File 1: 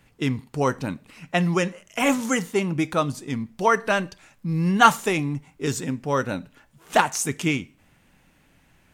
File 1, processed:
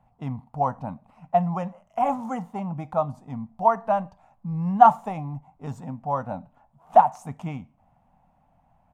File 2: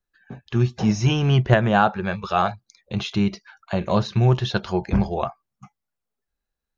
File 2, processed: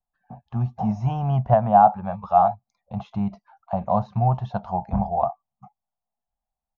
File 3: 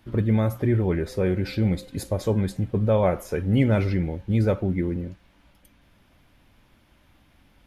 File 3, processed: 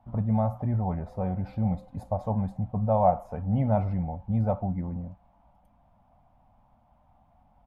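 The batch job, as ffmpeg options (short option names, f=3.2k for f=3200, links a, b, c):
-af "firequalizer=gain_entry='entry(230,0);entry(350,-18);entry(720,13);entry(1600,-14);entry(4200,-21)':delay=0.05:min_phase=1,volume=-4dB"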